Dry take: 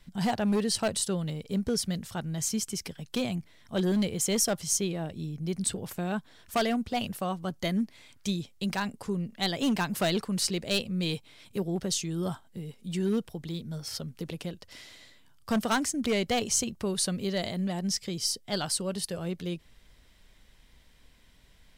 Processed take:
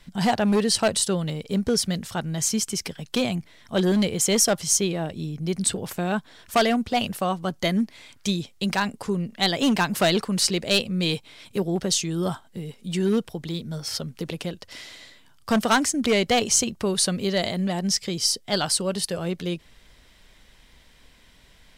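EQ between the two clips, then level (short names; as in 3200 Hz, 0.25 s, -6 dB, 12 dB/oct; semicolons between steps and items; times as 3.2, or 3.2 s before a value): low shelf 240 Hz -5 dB; high shelf 12000 Hz -6.5 dB; +8.0 dB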